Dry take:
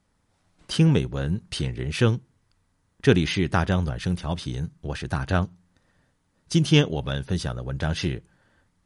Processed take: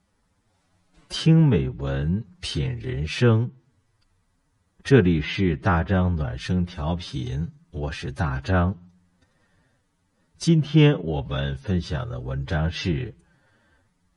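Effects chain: time stretch by phase-locked vocoder 1.6×; treble ducked by the level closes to 2200 Hz, closed at -20 dBFS; gain +1.5 dB

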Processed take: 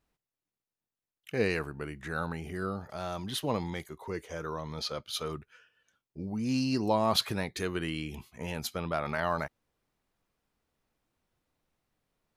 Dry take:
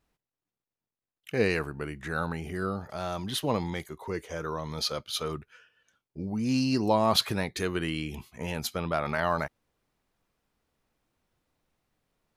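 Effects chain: 4.62–5.05 high shelf 7200 Hz -10 dB; gain -3 dB

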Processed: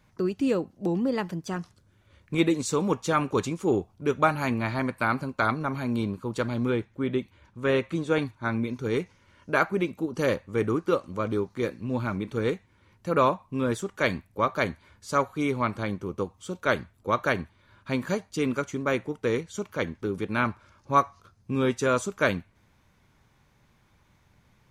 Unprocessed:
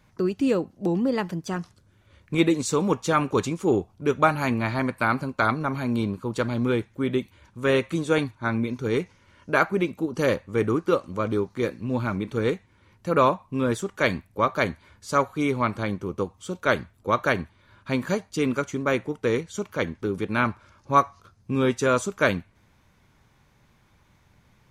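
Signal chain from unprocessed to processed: 6.7–8.22 high shelf 6600 Hz -11 dB; gain -2.5 dB

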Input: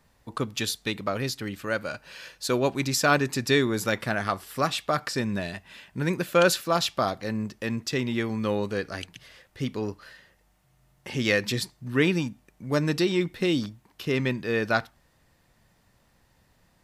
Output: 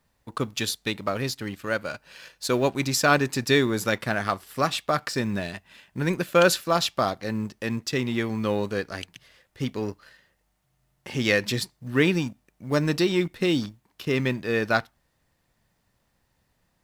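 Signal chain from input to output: G.711 law mismatch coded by A; gain +2 dB

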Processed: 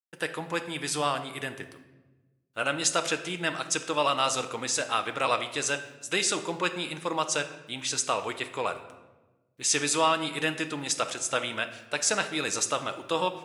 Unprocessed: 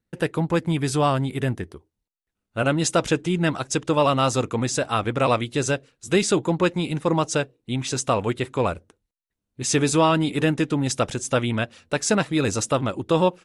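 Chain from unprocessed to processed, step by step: HPF 1400 Hz 6 dB/oct; requantised 12-bit, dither none; shoebox room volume 650 m³, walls mixed, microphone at 0.55 m

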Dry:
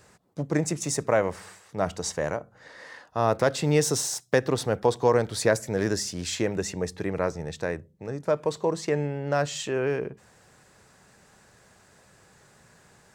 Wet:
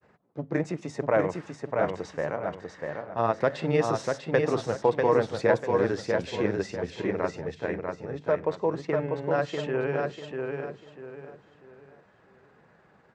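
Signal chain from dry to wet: HPF 160 Hz 6 dB/oct; grains 0.1 s, grains 20/s, spray 12 ms, pitch spread up and down by 0 st; LPF 2900 Hz 12 dB/oct; feedback echo 0.644 s, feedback 33%, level -4 dB; mismatched tape noise reduction decoder only

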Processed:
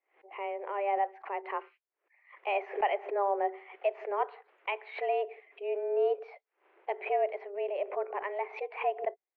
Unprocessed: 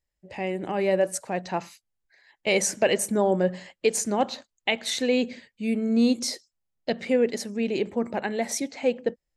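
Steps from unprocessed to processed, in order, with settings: mistuned SSB +200 Hz 170–2300 Hz; backwards sustainer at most 150 dB/s; gain -7 dB

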